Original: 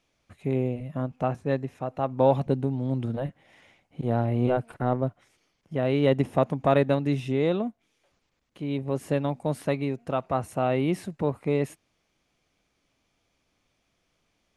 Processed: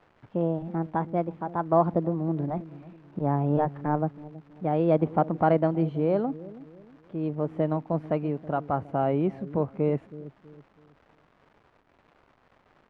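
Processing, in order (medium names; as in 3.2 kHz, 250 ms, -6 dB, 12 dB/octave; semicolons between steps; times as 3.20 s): gliding tape speed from 130% -> 96%; feedback echo behind a low-pass 323 ms, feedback 36%, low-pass 430 Hz, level -14.5 dB; crackle 530 per s -39 dBFS; low-pass 1.3 kHz 12 dB/octave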